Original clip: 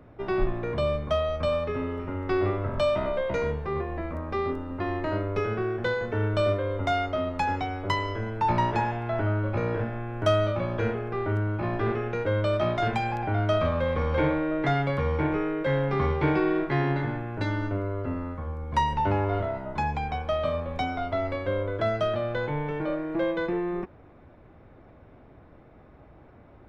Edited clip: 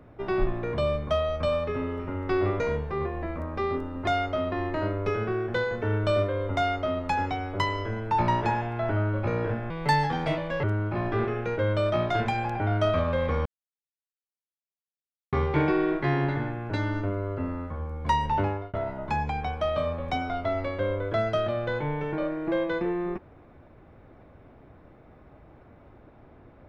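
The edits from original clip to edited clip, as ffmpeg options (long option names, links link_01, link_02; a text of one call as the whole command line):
ffmpeg -i in.wav -filter_complex "[0:a]asplit=9[link_01][link_02][link_03][link_04][link_05][link_06][link_07][link_08][link_09];[link_01]atrim=end=2.602[link_10];[link_02]atrim=start=3.348:end=4.822[link_11];[link_03]atrim=start=6.868:end=7.322[link_12];[link_04]atrim=start=4.818:end=10.004[link_13];[link_05]atrim=start=10:end=11.31,asetpts=PTS-STARTPTS,asetrate=61740,aresample=44100[link_14];[link_06]atrim=start=11.306:end=14.13,asetpts=PTS-STARTPTS,afade=type=out:start_time=2.82:duration=0.004:curve=hsin[link_15];[link_07]atrim=start=14.13:end=16,asetpts=PTS-STARTPTS,volume=0[link_16];[link_08]atrim=start=16:end=19.41,asetpts=PTS-STARTPTS,afade=type=in:duration=0.004:curve=hsin,afade=type=out:start_time=3.06:duration=0.35[link_17];[link_09]atrim=start=19.41,asetpts=PTS-STARTPTS,afade=type=in:duration=0.004:curve=hsin[link_18];[link_10][link_11]acrossfade=duration=0.004:curve1=hsin:curve2=hsin[link_19];[link_19][link_12]acrossfade=duration=0.004:curve1=hsin:curve2=hsin[link_20];[link_20][link_13]acrossfade=duration=0.004:curve1=hsin:curve2=hsin[link_21];[link_21][link_14]acrossfade=duration=0.004:curve1=hsin:curve2=hsin[link_22];[link_15][link_16][link_17][link_18]concat=n=4:v=0:a=1[link_23];[link_22][link_23]acrossfade=duration=0.004:curve1=hsin:curve2=hsin" out.wav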